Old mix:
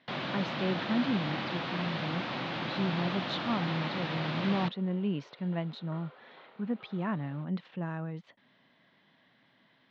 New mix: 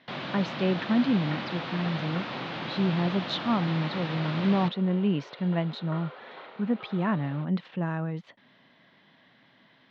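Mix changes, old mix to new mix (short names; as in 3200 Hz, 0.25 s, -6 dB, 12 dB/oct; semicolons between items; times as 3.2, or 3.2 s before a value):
speech +6.0 dB; second sound +10.0 dB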